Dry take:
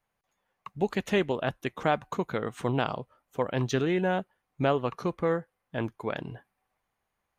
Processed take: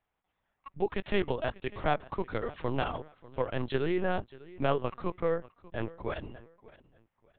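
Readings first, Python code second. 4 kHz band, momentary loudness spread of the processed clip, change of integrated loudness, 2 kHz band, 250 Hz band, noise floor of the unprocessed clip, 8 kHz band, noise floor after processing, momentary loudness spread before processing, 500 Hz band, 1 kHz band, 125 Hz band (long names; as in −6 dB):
−4.0 dB, 12 LU, −3.5 dB, −3.5 dB, −5.0 dB, −82 dBFS, below −30 dB, −83 dBFS, 12 LU, −3.0 dB, −3.0 dB, −4.5 dB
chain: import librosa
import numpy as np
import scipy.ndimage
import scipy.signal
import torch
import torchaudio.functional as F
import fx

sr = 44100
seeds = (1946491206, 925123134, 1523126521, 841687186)

y = fx.dynamic_eq(x, sr, hz=120.0, q=1.7, threshold_db=-45.0, ratio=4.0, max_db=-5)
y = fx.echo_feedback(y, sr, ms=591, feedback_pct=28, wet_db=-20.0)
y = fx.lpc_vocoder(y, sr, seeds[0], excitation='pitch_kept', order=10)
y = F.gain(torch.from_numpy(y), -2.0).numpy()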